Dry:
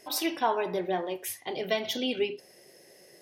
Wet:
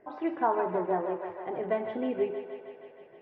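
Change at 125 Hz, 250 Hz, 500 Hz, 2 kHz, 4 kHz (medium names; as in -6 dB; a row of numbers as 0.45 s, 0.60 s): 0.0 dB, +0.5 dB, +1.0 dB, -6.0 dB, under -20 dB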